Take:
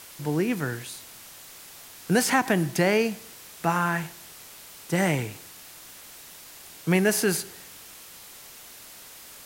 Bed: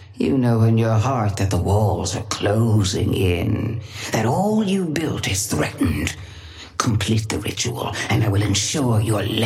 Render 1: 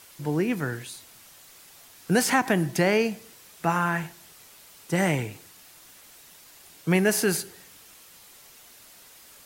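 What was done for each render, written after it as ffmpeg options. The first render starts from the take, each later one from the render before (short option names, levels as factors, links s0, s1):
-af "afftdn=nr=6:nf=-46"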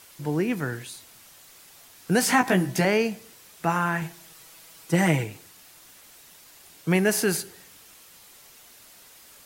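-filter_complex "[0:a]asettb=1/sr,asplit=3[s0][s1][s2];[s0]atrim=end=2.214[s3];[s1]atrim=start=2.21:end=2.85,asetpts=PTS-STARTPTS,afade=t=in:d=0.004:c=qsin,afade=t=out:st=0.636:d=0.004:c=qsin,asplit=2[s4][s5];[s5]adelay=16,volume=0.668[s6];[s4][s6]amix=inputs=2:normalize=0,atrim=end_sample=28224[s7];[s2]atrim=start=2.846[s8];[s3][s7]acrossfade=d=0.004:c1=hsin:c2=qsin[s9];[s9][s8]acrossfade=d=0.004:c1=qsin:c2=hsin,asettb=1/sr,asplit=3[s10][s11][s12];[s10]atrim=end=4.014[s13];[s11]atrim=start=4.01:end=5.24,asetpts=PTS-STARTPTS,afade=t=in:d=0.004:c=qsin,afade=t=out:st=1.226:d=0.004:c=qsin,aecho=1:1:6.2:0.66,atrim=end_sample=54243[s14];[s12]atrim=start=5.236[s15];[s13][s14]acrossfade=d=0.004:c1=hsin:c2=qsin[s16];[s16][s15]acrossfade=d=0.004:c1=qsin:c2=hsin"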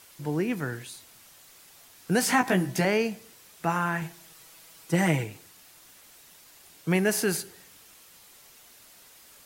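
-af "volume=0.75"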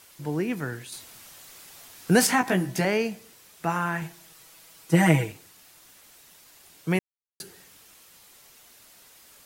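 -filter_complex "[0:a]asettb=1/sr,asplit=3[s0][s1][s2];[s0]atrim=end=0.924[s3];[s1]atrim=start=0.92:end=2.27,asetpts=PTS-STARTPTS,afade=t=in:d=0.004:c=qsin,afade=t=out:st=1.346:d=0.004:c=qsin,acontrast=38[s4];[s2]atrim=start=2.266[s5];[s3][s4]acrossfade=d=0.004:c1=hsin:c2=qsin[s6];[s6][s5]acrossfade=d=0.004:c1=qsin:c2=hsin,asettb=1/sr,asplit=3[s7][s8][s9];[s7]atrim=end=4.914[s10];[s8]atrim=start=4.91:end=5.32,asetpts=PTS-STARTPTS,afade=t=in:d=0.004:c=qsin,afade=t=out:st=0.406:d=0.004:c=qsin,aecho=1:1:6.3:0.97,atrim=end_sample=18081[s11];[s9]atrim=start=5.316[s12];[s10][s11]acrossfade=d=0.004:c1=hsin:c2=qsin[s13];[s13][s12]acrossfade=d=0.004:c1=qsin:c2=hsin,asplit=3[s14][s15][s16];[s14]atrim=end=6.99,asetpts=PTS-STARTPTS,afade=t=out:st=6.986:d=0.004:c=hsin[s17];[s15]atrim=start=6.99:end=7.4,asetpts=PTS-STARTPTS,volume=0[s18];[s16]atrim=start=7.4,asetpts=PTS-STARTPTS,afade=t=in:d=0.004:c=hsin[s19];[s17][s18][s19]concat=n=3:v=0:a=1"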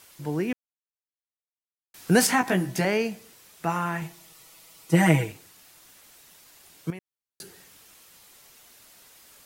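-filter_complex "[0:a]asettb=1/sr,asplit=3[s0][s1][s2];[s0]atrim=end=3.684[s3];[s1]atrim=start=3.68:end=4.95,asetpts=PTS-STARTPTS,afade=t=in:d=0.004:c=qsin,afade=t=out:st=1.266:d=0.004:c=qsin,bandreject=f=1600:w=7.9[s4];[s2]atrim=start=4.946[s5];[s3][s4]acrossfade=d=0.004:c1=hsin:c2=qsin[s6];[s6][s5]acrossfade=d=0.004:c1=qsin:c2=hsin,asettb=1/sr,asplit=3[s7][s8][s9];[s7]atrim=end=6.904[s10];[s8]atrim=start=6.9:end=7.42,asetpts=PTS-STARTPTS,afade=t=in:d=0.004:c=qsin,afade=t=out:st=0.516:d=0.004:c=qsin,acompressor=threshold=0.0141:ratio=5:attack=3.2:release=140:knee=1:detection=peak[s11];[s9]atrim=start=7.416[s12];[s10][s11]acrossfade=d=0.004:c1=hsin:c2=qsin[s13];[s13][s12]acrossfade=d=0.004:c1=qsin:c2=hsin,asplit=3[s14][s15][s16];[s14]atrim=end=0.53,asetpts=PTS-STARTPTS,afade=t=out:st=0.526:d=0.004:c=hsin[s17];[s15]atrim=start=0.53:end=1.94,asetpts=PTS-STARTPTS,volume=0[s18];[s16]atrim=start=1.94,asetpts=PTS-STARTPTS,afade=t=in:d=0.004:c=hsin[s19];[s17][s18][s19]concat=n=3:v=0:a=1"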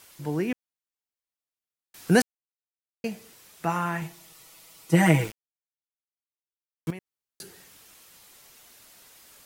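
-filter_complex "[0:a]asettb=1/sr,asplit=3[s0][s1][s2];[s0]atrim=end=5.054[s3];[s1]atrim=start=5.05:end=6.91,asetpts=PTS-STARTPTS,afade=t=in:d=0.004:c=qsin,afade=t=out:st=1.856:d=0.004:c=qsin,aeval=exprs='val(0)*gte(abs(val(0)),0.0178)':c=same[s4];[s2]atrim=start=6.906[s5];[s3][s4]acrossfade=d=0.004:c1=hsin:c2=qsin[s6];[s6][s5]acrossfade=d=0.004:c1=qsin:c2=hsin,asplit=3[s7][s8][s9];[s7]atrim=end=2.22,asetpts=PTS-STARTPTS,afade=t=out:st=2.216:d=0.004:c=hsin[s10];[s8]atrim=start=2.22:end=3.04,asetpts=PTS-STARTPTS,volume=0[s11];[s9]atrim=start=3.04,asetpts=PTS-STARTPTS,afade=t=in:d=0.004:c=hsin[s12];[s10][s11][s12]concat=n=3:v=0:a=1"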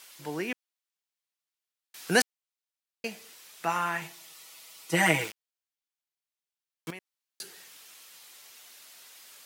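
-af "highpass=f=610:p=1,equalizer=f=3500:t=o:w=2.1:g=4"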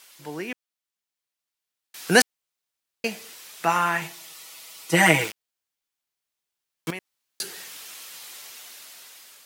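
-af "dynaudnorm=f=760:g=5:m=3.98"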